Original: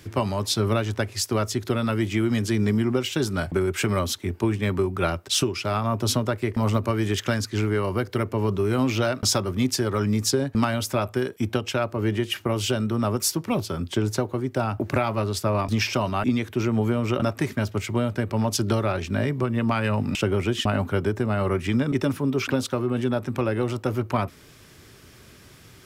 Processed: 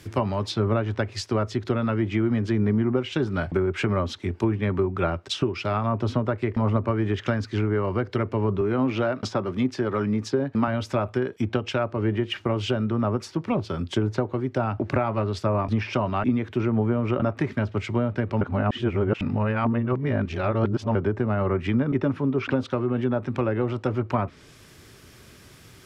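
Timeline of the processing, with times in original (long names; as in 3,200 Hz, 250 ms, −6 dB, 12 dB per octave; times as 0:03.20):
0:08.61–0:10.68: high-pass filter 130 Hz
0:18.41–0:20.95: reverse
whole clip: treble cut that deepens with the level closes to 1,600 Hz, closed at −19 dBFS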